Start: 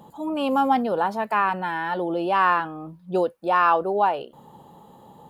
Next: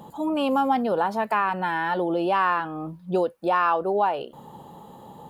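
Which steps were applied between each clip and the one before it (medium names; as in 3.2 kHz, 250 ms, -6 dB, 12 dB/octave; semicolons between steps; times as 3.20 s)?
compression 2:1, threshold -27 dBFS, peak gain reduction 7.5 dB; trim +4 dB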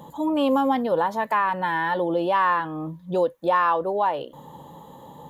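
rippled EQ curve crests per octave 1.1, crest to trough 7 dB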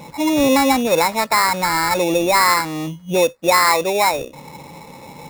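sample-rate reducer 3.1 kHz, jitter 0%; trim +6 dB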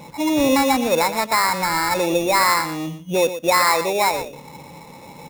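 delay 119 ms -11.5 dB; trim -2.5 dB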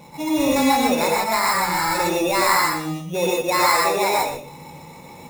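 gated-style reverb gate 170 ms rising, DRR -3 dB; trim -5 dB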